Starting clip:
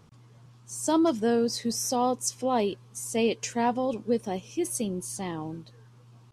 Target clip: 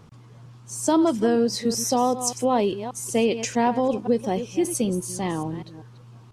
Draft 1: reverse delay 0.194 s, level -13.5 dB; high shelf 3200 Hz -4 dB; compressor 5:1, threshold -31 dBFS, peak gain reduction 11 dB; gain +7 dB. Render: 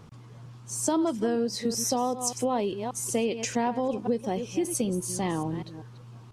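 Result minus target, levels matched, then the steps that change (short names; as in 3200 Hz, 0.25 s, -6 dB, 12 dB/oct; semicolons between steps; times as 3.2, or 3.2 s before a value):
compressor: peak gain reduction +6.5 dB
change: compressor 5:1, threshold -23 dBFS, peak gain reduction 4.5 dB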